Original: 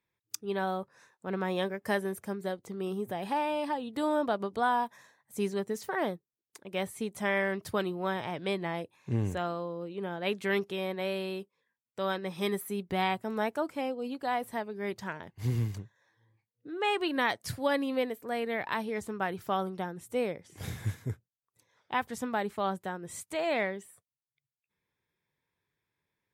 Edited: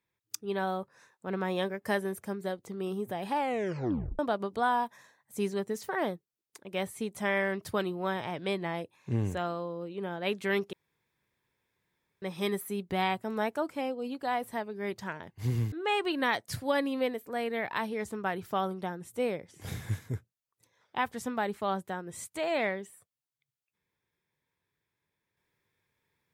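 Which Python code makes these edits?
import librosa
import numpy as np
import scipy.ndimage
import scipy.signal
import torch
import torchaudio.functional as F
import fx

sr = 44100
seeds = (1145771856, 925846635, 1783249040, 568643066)

y = fx.edit(x, sr, fx.tape_stop(start_s=3.37, length_s=0.82),
    fx.room_tone_fill(start_s=10.73, length_s=1.49),
    fx.cut(start_s=15.72, length_s=0.96), tone=tone)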